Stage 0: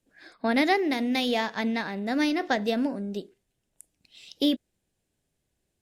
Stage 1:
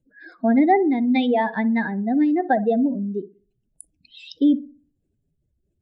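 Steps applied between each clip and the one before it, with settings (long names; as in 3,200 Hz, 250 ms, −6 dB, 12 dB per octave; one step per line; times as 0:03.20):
expanding power law on the bin magnitudes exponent 2.4
feedback echo with a low-pass in the loop 61 ms, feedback 41%, low-pass 870 Hz, level −15 dB
level +7 dB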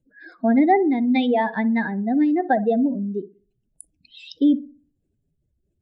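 no processing that can be heard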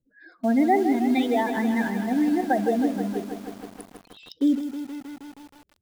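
in parallel at −11 dB: bit reduction 5 bits
on the sum: feedback echo at a low word length 158 ms, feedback 80%, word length 6 bits, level −9.5 dB
level −6 dB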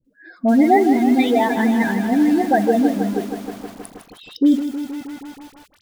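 all-pass dispersion highs, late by 48 ms, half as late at 1,100 Hz
level +6.5 dB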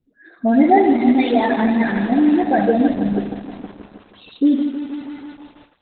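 on a send at −7.5 dB: convolution reverb RT60 0.45 s, pre-delay 49 ms
on the sum: Opus 8 kbit/s 48,000 Hz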